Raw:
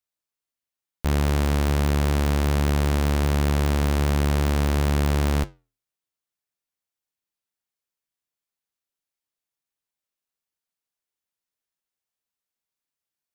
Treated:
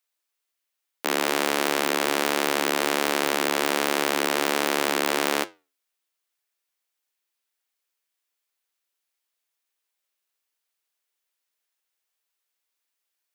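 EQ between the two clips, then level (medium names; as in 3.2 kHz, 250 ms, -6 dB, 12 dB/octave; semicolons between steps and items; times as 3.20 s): high-pass 310 Hz 24 dB/octave; peaking EQ 2.4 kHz +5 dB 2.3 oct; treble shelf 7.9 kHz +5.5 dB; +3.0 dB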